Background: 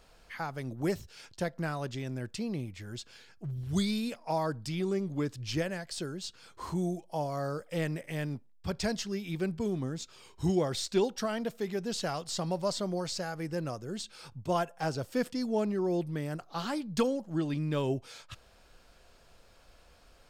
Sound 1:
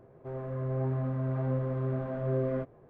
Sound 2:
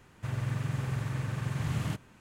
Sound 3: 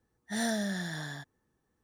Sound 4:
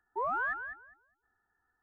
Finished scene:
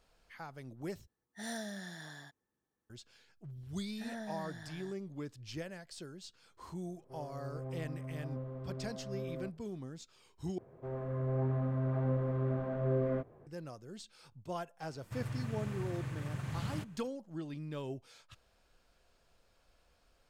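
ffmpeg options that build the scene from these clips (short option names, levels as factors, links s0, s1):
-filter_complex "[3:a]asplit=2[s0][s1];[1:a]asplit=2[s2][s3];[0:a]volume=0.299[s4];[s0]lowshelf=f=120:g=-9[s5];[s1]acrossover=split=2700[s6][s7];[s7]acompressor=threshold=0.00398:ratio=4:attack=1:release=60[s8];[s6][s8]amix=inputs=2:normalize=0[s9];[s2]equalizer=f=1700:w=1.7:g=-4[s10];[s4]asplit=3[s11][s12][s13];[s11]atrim=end=1.074[s14];[s5]atrim=end=1.83,asetpts=PTS-STARTPTS,volume=0.355[s15];[s12]atrim=start=2.896:end=10.584[s16];[s3]atrim=end=2.89,asetpts=PTS-STARTPTS,volume=0.794[s17];[s13]atrim=start=13.466[s18];[s9]atrim=end=1.83,asetpts=PTS-STARTPTS,volume=0.266,afade=t=in:d=0.004:c=hsin,afade=t=out:st=1.826:d=0.004:c=hsin,adelay=162729S[s19];[s10]atrim=end=2.89,asetpts=PTS-STARTPTS,volume=0.266,afade=t=in:d=0.004:c=hsin,afade=t=out:st=2.886:d=0.004:c=hsin,adelay=6850[s20];[2:a]atrim=end=2.2,asetpts=PTS-STARTPTS,volume=0.447,afade=t=in:d=0.004:c=hsin,afade=t=out:st=2.196:d=0.004:c=hsin,adelay=14880[s21];[s14][s15]acrossfade=d=0.004:c1=hsin:c2=hsin[s22];[s22][s16]acrossfade=d=0.004:c1=hsin:c2=hsin[s23];[s23][s17]acrossfade=d=0.004:c1=hsin:c2=hsin[s24];[s24][s18]acrossfade=d=0.004:c1=hsin:c2=hsin[s25];[s25][s19][s20][s21]amix=inputs=4:normalize=0"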